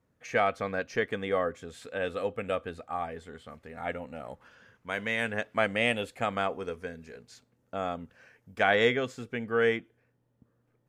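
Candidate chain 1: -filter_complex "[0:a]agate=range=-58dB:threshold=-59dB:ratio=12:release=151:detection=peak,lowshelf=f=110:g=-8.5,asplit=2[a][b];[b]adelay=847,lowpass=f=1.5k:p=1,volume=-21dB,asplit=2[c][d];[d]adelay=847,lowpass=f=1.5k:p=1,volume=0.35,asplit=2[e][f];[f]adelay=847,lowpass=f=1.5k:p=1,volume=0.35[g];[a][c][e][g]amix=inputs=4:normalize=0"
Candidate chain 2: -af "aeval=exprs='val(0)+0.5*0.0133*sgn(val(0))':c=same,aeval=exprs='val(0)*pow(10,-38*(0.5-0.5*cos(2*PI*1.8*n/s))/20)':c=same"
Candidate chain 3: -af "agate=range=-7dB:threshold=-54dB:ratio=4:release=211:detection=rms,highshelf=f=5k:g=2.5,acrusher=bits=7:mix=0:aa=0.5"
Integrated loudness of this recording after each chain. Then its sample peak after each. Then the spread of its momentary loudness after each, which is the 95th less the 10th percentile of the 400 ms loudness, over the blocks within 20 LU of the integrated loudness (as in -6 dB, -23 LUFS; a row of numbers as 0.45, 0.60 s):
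-31.0, -37.5, -30.5 LUFS; -10.0, -12.0, -10.5 dBFS; 21, 17, 19 LU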